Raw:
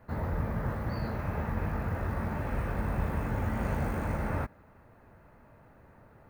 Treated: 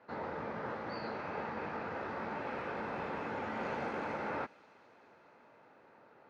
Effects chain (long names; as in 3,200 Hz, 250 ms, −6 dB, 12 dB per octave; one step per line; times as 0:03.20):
loudspeaker in its box 400–5,000 Hz, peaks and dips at 640 Hz −5 dB, 1,100 Hz −4 dB, 1,800 Hz −5 dB
delay with a high-pass on its return 206 ms, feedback 79%, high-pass 3,700 Hz, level −16 dB
level +2 dB